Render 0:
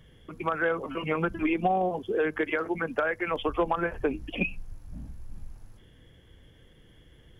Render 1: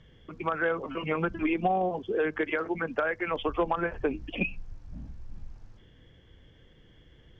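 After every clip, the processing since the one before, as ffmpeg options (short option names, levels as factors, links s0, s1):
-af "lowpass=f=6300:w=0.5412,lowpass=f=6300:w=1.3066,volume=0.891"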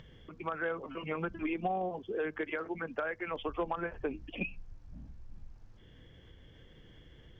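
-af "acompressor=mode=upward:threshold=0.0112:ratio=2.5,volume=0.447"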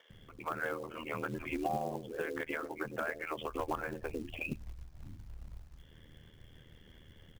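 -filter_complex "[0:a]acrossover=split=440[s0][s1];[s0]adelay=100[s2];[s2][s1]amix=inputs=2:normalize=0,acrusher=bits=5:mode=log:mix=0:aa=0.000001,aeval=exprs='val(0)*sin(2*PI*39*n/s)':c=same,volume=1.33"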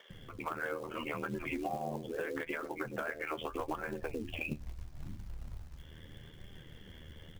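-af "acompressor=threshold=0.00891:ratio=3,flanger=delay=5:depth=8.4:regen=57:speed=0.77:shape=sinusoidal,volume=2.99"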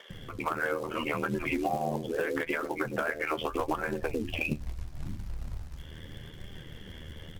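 -af "volume=2.24" -ar 48000 -c:a sbc -b:a 128k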